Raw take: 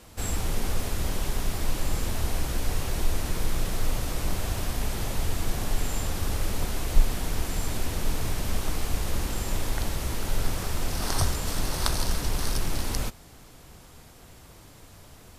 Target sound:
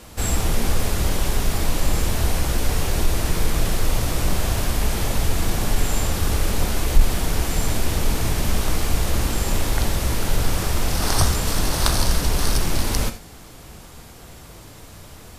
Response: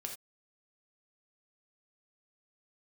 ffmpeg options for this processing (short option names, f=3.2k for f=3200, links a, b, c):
-filter_complex "[0:a]acontrast=62,asplit=2[a][b];[1:a]atrim=start_sample=2205[c];[b][c]afir=irnorm=-1:irlink=0,volume=2.5dB[d];[a][d]amix=inputs=2:normalize=0,volume=-4.5dB"